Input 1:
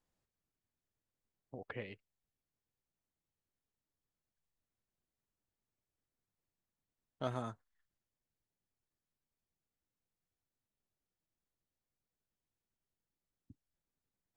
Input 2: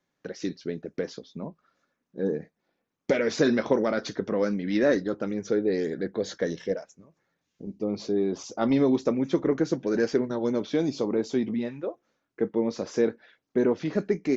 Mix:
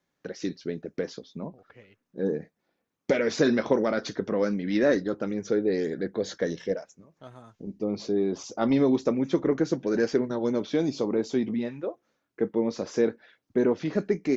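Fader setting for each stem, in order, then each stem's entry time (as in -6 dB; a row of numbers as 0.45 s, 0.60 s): -8.0 dB, 0.0 dB; 0.00 s, 0.00 s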